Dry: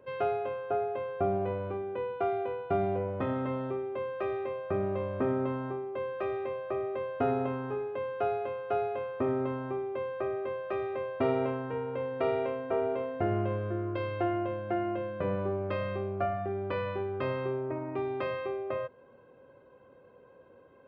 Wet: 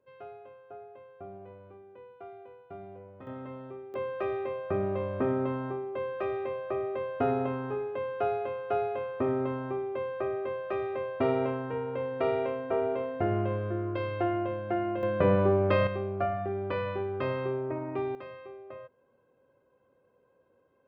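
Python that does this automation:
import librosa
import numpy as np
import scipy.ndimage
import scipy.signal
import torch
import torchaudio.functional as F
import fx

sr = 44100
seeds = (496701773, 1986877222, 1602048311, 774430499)

y = fx.gain(x, sr, db=fx.steps((0.0, -16.0), (3.27, -9.0), (3.94, 1.0), (15.03, 8.0), (15.87, 1.0), (18.15, -11.0)))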